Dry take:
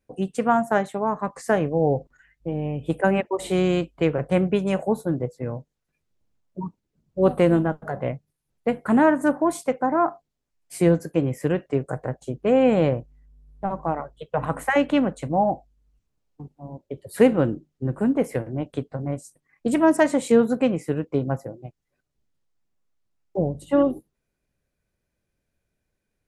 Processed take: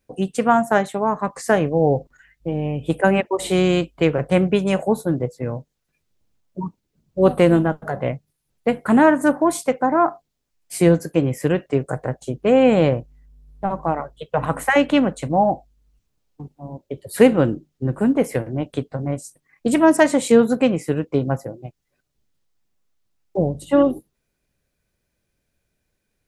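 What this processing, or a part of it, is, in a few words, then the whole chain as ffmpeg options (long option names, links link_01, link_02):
presence and air boost: -af "equalizer=frequency=4100:width_type=o:width=1.9:gain=3.5,highshelf=frequency=11000:gain=6.5,volume=3.5dB"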